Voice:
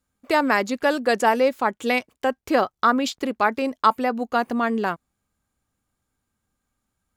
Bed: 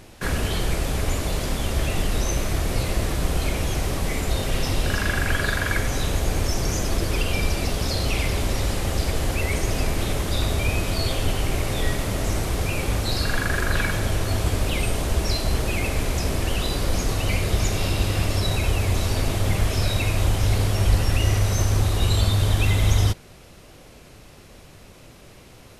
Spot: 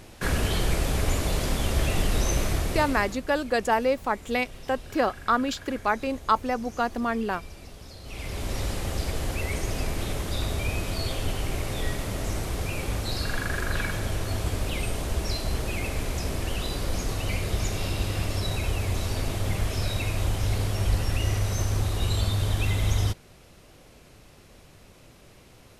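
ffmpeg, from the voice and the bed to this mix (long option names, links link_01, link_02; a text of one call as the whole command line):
ffmpeg -i stem1.wav -i stem2.wav -filter_complex "[0:a]adelay=2450,volume=-4.5dB[link_01];[1:a]volume=13.5dB,afade=type=out:start_time=2.44:duration=0.78:silence=0.112202,afade=type=in:start_time=8.03:duration=0.56:silence=0.188365[link_02];[link_01][link_02]amix=inputs=2:normalize=0" out.wav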